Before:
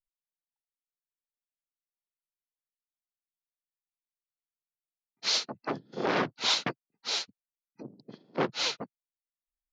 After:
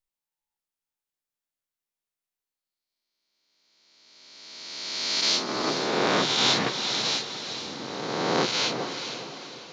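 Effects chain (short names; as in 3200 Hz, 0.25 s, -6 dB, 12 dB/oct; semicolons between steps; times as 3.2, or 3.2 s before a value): spectral swells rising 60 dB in 2.13 s; diffused feedback echo 0.458 s, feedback 43%, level -8 dB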